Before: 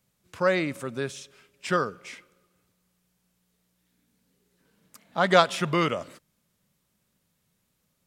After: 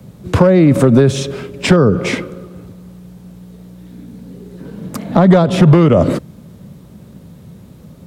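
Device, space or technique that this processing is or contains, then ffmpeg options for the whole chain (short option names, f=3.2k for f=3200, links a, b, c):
mastering chain: -filter_complex "[0:a]highpass=57,tiltshelf=f=970:g=4.5,equalizer=f=3.8k:t=o:w=0.5:g=3.5,acrossover=split=140|570[a][b][c];[a]acompressor=threshold=-40dB:ratio=4[d];[b]acompressor=threshold=-33dB:ratio=4[e];[c]acompressor=threshold=-36dB:ratio=4[f];[d][e][f]amix=inputs=3:normalize=0,acompressor=threshold=-38dB:ratio=2,tiltshelf=f=860:g=7,asoftclip=type=hard:threshold=-25.5dB,alimiter=level_in=29.5dB:limit=-1dB:release=50:level=0:latency=1,volume=-1dB"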